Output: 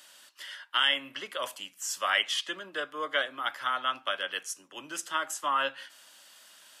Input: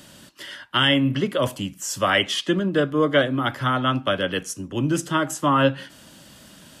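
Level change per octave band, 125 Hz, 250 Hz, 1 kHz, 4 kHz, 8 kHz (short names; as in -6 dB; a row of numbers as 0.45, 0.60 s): under -35 dB, -26.0 dB, -7.0 dB, -5.0 dB, -5.0 dB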